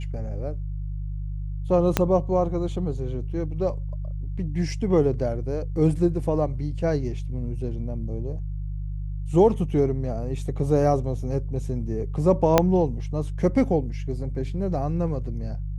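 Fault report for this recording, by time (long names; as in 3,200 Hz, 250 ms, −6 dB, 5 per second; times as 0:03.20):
mains hum 50 Hz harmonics 3 −30 dBFS
0:01.97: click −4 dBFS
0:12.58: click −2 dBFS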